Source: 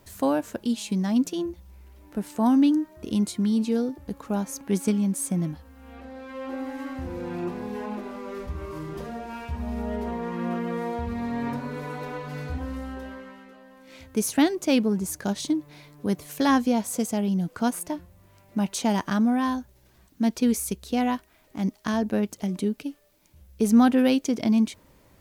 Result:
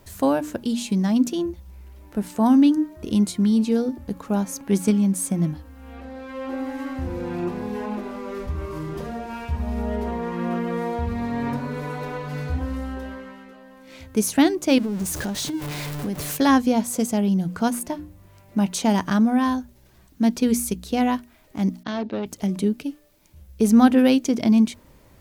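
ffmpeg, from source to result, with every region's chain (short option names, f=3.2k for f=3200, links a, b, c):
-filter_complex "[0:a]asettb=1/sr,asplit=3[a][b][c];[a]atrim=end=14.784[d];[b]atrim=start=14.78:end=16.37,asetpts=PTS-STARTPTS,afade=t=in:d=0.004:c=qsin,afade=t=out:st=1.586:d=0.004:c=qsin,aeval=exprs='val(0)+0.5*0.0316*sgn(val(0))':c=same,acompressor=threshold=-27dB:ratio=10:attack=3.2:release=140:knee=1:detection=peak[e];[c]atrim=start=16.366[f];[d][e]acrossfade=d=0.004:c1=hsin:c2=qsin[g];[g][f]acrossfade=d=0.004:c1=qsin:c2=hsin,asettb=1/sr,asplit=3[h][i][j];[h]atrim=end=21.834[k];[i]atrim=start=21.83:end=22.26,asetpts=PTS-STARTPTS,afade=t=in:d=0.004:c=qsin,afade=t=out:st=0.426:d=0.004:c=qsin,agate=range=-33dB:threshold=-40dB:ratio=3:release=100:detection=peak,volume=22.5dB,asoftclip=hard,volume=-22.5dB,highpass=160,equalizer=f=200:t=q:w=4:g=-8,equalizer=f=1.1k:t=q:w=4:g=-6,equalizer=f=1.7k:t=q:w=4:g=-4,equalizer=f=3.8k:t=q:w=4:g=4,lowpass=f=4.6k:w=0.5412,lowpass=f=4.6k:w=1.3066[l];[j]atrim=start=22.256[m];[k][l]acrossfade=d=0.004:c1=hsin:c2=qsin[n];[n][m]acrossfade=d=0.004:c1=qsin:c2=hsin,lowshelf=f=150:g=5,bandreject=f=60:t=h:w=6,bandreject=f=120:t=h:w=6,bandreject=f=180:t=h:w=6,bandreject=f=240:t=h:w=6,bandreject=f=300:t=h:w=6,volume=3dB"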